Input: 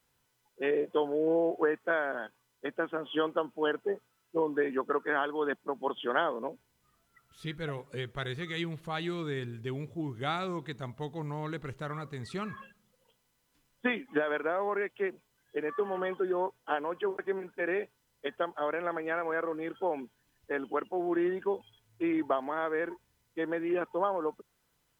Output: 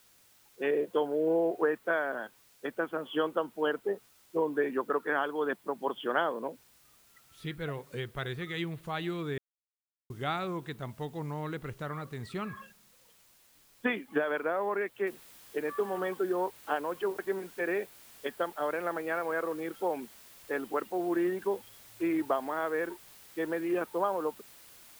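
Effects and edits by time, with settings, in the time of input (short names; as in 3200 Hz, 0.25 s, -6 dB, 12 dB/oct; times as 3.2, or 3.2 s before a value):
9.38–10.1 mute
15.07 noise floor step -63 dB -54 dB
whole clip: dynamic EQ 6000 Hz, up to -6 dB, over -59 dBFS, Q 1.3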